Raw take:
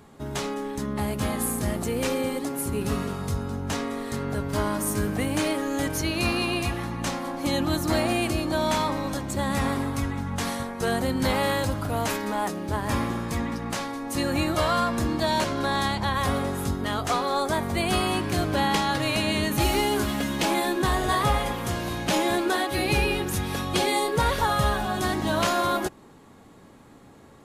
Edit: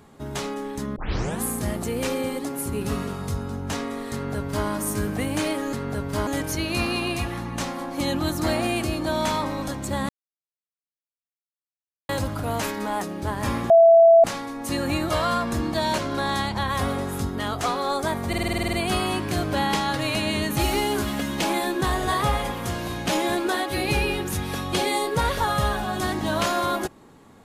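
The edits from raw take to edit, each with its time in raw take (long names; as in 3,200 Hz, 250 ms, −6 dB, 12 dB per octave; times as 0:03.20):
0:00.96: tape start 0.46 s
0:04.13–0:04.67: duplicate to 0:05.73
0:09.55–0:11.55: silence
0:13.16–0:13.70: beep over 666 Hz −9 dBFS
0:17.74: stutter 0.05 s, 10 plays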